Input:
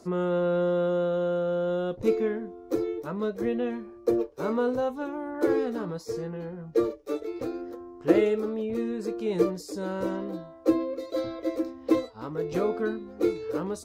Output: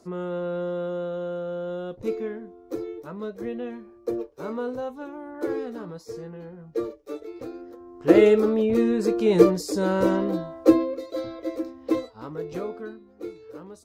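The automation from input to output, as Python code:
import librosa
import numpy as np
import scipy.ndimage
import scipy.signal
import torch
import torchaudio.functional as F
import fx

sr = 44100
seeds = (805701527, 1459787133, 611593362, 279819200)

y = fx.gain(x, sr, db=fx.line((7.76, -4.0), (8.27, 8.5), (10.61, 8.5), (11.1, -1.0), (12.32, -1.0), (13.06, -11.0)))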